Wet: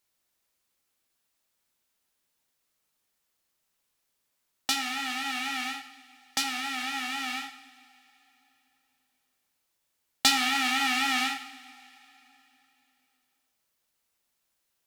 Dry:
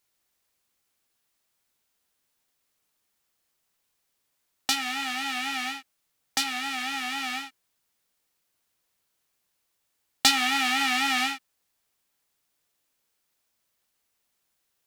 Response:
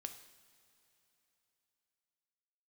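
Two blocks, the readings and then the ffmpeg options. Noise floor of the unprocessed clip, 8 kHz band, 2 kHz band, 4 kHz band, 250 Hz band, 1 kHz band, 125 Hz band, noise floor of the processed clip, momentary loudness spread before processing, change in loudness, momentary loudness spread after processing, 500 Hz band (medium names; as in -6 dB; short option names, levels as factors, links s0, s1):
-77 dBFS, -1.5 dB, -1.5 dB, -2.0 dB, -1.0 dB, -1.5 dB, no reading, -78 dBFS, 12 LU, -2.0 dB, 12 LU, -2.0 dB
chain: -filter_complex "[1:a]atrim=start_sample=2205,asetrate=48510,aresample=44100[s0];[0:a][s0]afir=irnorm=-1:irlink=0,volume=1.41"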